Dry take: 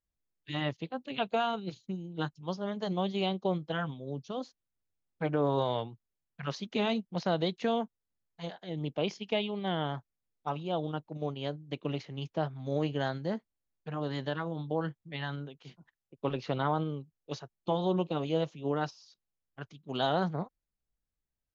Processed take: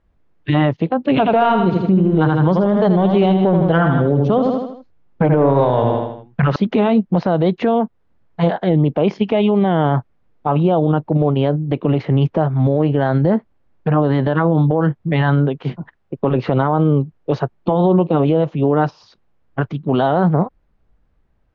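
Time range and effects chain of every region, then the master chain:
1.09–6.56 s: waveshaping leveller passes 1 + feedback delay 79 ms, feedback 45%, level -7.5 dB
whole clip: Bessel low-pass 1.2 kHz, order 2; compression, threshold -36 dBFS; loudness maximiser +34 dB; trim -5.5 dB

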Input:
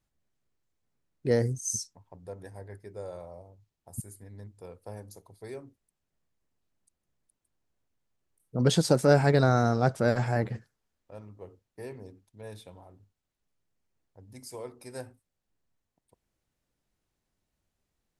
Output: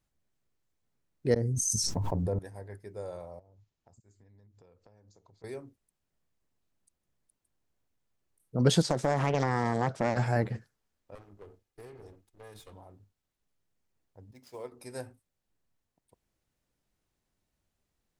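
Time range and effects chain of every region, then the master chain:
1.34–2.39 s: tilt shelf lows +6.5 dB, about 760 Hz + inverted gate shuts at -19 dBFS, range -28 dB + level flattener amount 100%
3.39–5.44 s: compression 10:1, threshold -56 dBFS + steep low-pass 7.5 kHz 96 dB/octave
8.82–10.17 s: band-pass 100–6400 Hz + compression, threshold -21 dBFS + loudspeaker Doppler distortion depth 0.63 ms
11.15–12.73 s: comb filter that takes the minimum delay 2.4 ms + compression, threshold -44 dBFS
14.31–14.72 s: median filter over 5 samples + bass shelf 130 Hz -8.5 dB + upward expansion, over -51 dBFS
whole clip: none

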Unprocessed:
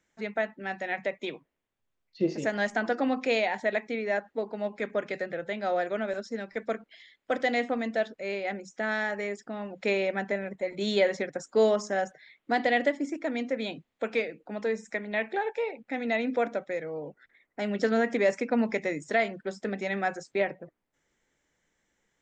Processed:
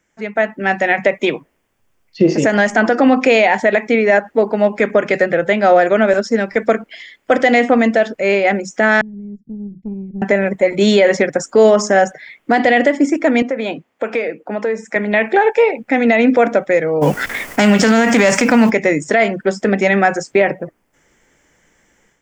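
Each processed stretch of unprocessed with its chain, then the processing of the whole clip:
9.01–10.22 s: inverse Chebyshev low-pass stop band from 510 Hz, stop band 50 dB + valve stage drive 37 dB, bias 0.55
13.42–14.96 s: treble shelf 2.6 kHz -9.5 dB + compression 4:1, threshold -31 dBFS + high-pass 380 Hz 6 dB/octave
17.01–18.69 s: formants flattened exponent 0.6 + band-stop 350 Hz, Q 7.3 + level flattener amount 50%
whole clip: peaking EQ 3.9 kHz -9.5 dB 0.29 oct; level rider gain up to 10.5 dB; loudness maximiser +10 dB; trim -1.5 dB

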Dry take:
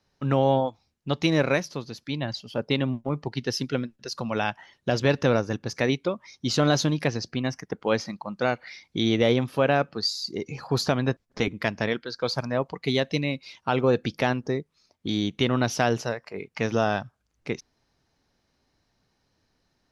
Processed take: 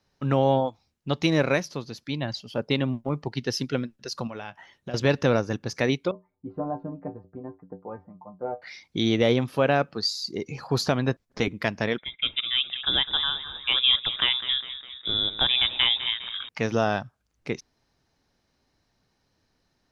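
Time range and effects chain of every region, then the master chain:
4.27–4.94 s: peaking EQ 4.7 kHz -4.5 dB 0.51 oct + compression 2.5:1, threshold -37 dBFS + doubling 21 ms -13 dB
6.11–8.62 s: low-pass 1 kHz 24 dB/octave + inharmonic resonator 90 Hz, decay 0.23 s, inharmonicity 0.008
11.98–16.49 s: frequency-shifting echo 203 ms, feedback 55%, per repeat -49 Hz, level -12.5 dB + frequency inversion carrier 3.7 kHz
whole clip: none

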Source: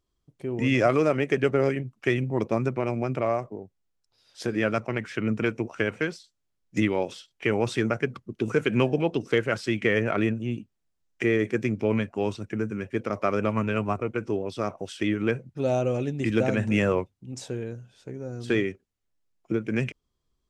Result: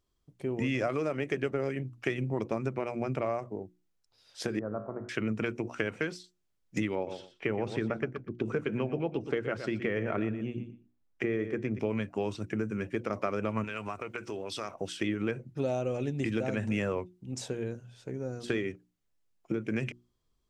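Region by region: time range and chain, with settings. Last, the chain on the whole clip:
4.59–5.09 s: steep low-pass 1.2 kHz + feedback comb 52 Hz, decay 0.87 s, mix 70%
6.95–11.79 s: low-pass 1.7 kHz 6 dB/octave + feedback delay 120 ms, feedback 17%, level -12 dB
13.64–14.75 s: tilt shelf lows -7 dB, about 790 Hz + compression 4:1, threshold -33 dBFS
whole clip: compression, threshold -27 dBFS; hum notches 60/120/180/240/300/360 Hz

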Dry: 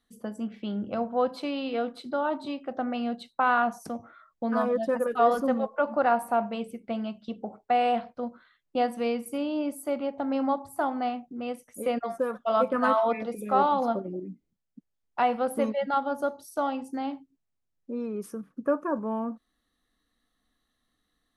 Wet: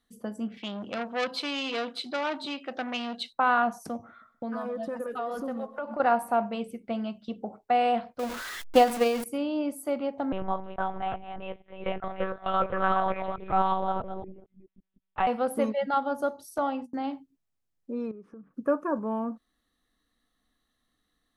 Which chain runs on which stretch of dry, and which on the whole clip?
0.57–3.33 s: frequency weighting D + transformer saturation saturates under 2.1 kHz
3.96–6.00 s: compression 4:1, threshold -31 dBFS + feedback delay 128 ms, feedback 39%, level -18.5 dB
8.19–9.24 s: jump at every zero crossing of -32 dBFS + peaking EQ 140 Hz -12.5 dB 1.3 oct + transient shaper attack +12 dB, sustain +4 dB
10.32–15.27 s: chunks repeated in reverse 217 ms, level -8 dB + bass shelf 480 Hz -7.5 dB + monotone LPC vocoder at 8 kHz 190 Hz
16.58–17.04 s: gate -40 dBFS, range -26 dB + low-pass 3.6 kHz 6 dB/octave + hum notches 60/120/180/240/300 Hz
18.11–18.54 s: low-pass 1.5 kHz + compression 4:1, threshold -44 dBFS
whole clip: none

